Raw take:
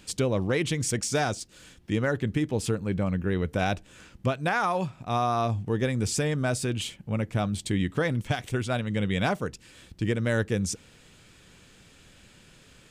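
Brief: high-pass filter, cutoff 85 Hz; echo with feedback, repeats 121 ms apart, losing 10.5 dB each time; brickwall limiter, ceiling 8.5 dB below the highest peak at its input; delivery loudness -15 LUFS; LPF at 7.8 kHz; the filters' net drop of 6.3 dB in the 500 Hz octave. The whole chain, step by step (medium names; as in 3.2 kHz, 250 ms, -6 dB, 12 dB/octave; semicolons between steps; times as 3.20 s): high-pass 85 Hz; low-pass 7.8 kHz; peaking EQ 500 Hz -8 dB; peak limiter -24 dBFS; feedback delay 121 ms, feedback 30%, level -10.5 dB; trim +18.5 dB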